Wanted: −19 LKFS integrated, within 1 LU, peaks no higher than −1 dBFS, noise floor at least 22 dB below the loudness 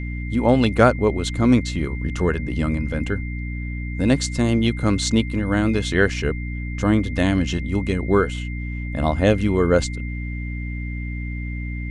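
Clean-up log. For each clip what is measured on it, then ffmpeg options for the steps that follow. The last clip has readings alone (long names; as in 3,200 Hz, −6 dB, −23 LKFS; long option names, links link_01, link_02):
mains hum 60 Hz; hum harmonics up to 300 Hz; level of the hum −25 dBFS; interfering tone 2,100 Hz; level of the tone −36 dBFS; integrated loudness −21.5 LKFS; sample peak −1.0 dBFS; target loudness −19.0 LKFS
→ -af "bandreject=frequency=60:width_type=h:width=6,bandreject=frequency=120:width_type=h:width=6,bandreject=frequency=180:width_type=h:width=6,bandreject=frequency=240:width_type=h:width=6,bandreject=frequency=300:width_type=h:width=6"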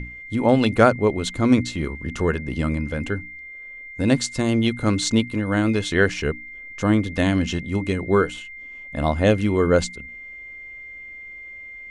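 mains hum none found; interfering tone 2,100 Hz; level of the tone −36 dBFS
→ -af "bandreject=frequency=2100:width=30"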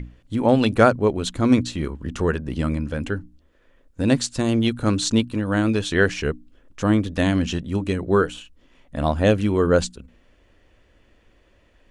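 interfering tone none found; integrated loudness −21.5 LKFS; sample peak −2.0 dBFS; target loudness −19.0 LKFS
→ -af "volume=2.5dB,alimiter=limit=-1dB:level=0:latency=1"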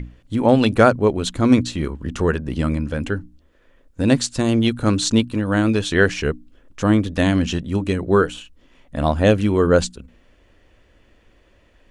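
integrated loudness −19.0 LKFS; sample peak −1.0 dBFS; background noise floor −56 dBFS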